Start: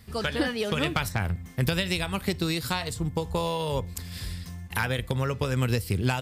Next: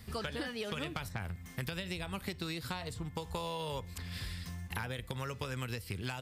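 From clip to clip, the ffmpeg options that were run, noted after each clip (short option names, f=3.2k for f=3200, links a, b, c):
-filter_complex "[0:a]acrossover=split=930|3900[a][b][c];[a]acompressor=threshold=-40dB:ratio=4[d];[b]acompressor=threshold=-43dB:ratio=4[e];[c]acompressor=threshold=-52dB:ratio=4[f];[d][e][f]amix=inputs=3:normalize=0"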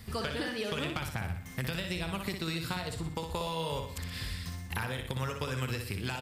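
-af "aecho=1:1:61|122|183|244|305|366:0.501|0.236|0.111|0.052|0.0245|0.0115,volume=3dB"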